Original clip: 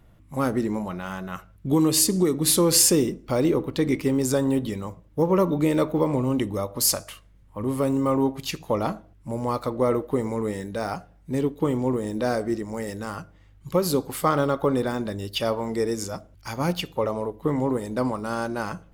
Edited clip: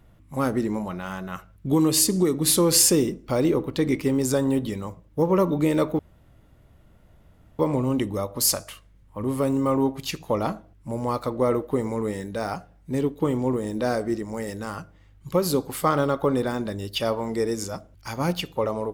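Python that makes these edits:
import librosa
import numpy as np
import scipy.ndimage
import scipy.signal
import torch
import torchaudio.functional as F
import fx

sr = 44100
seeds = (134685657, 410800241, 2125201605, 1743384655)

y = fx.edit(x, sr, fx.insert_room_tone(at_s=5.99, length_s=1.6), tone=tone)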